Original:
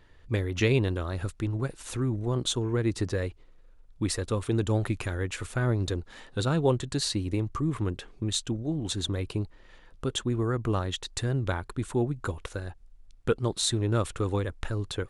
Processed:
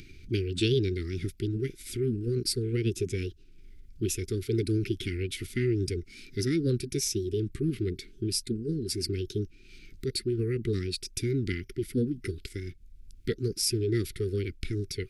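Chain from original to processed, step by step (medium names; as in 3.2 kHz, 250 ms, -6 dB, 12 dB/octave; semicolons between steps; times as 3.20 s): upward compressor, threshold -38 dBFS; Chebyshev band-stop 390–1500 Hz, order 4; formant shift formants +5 st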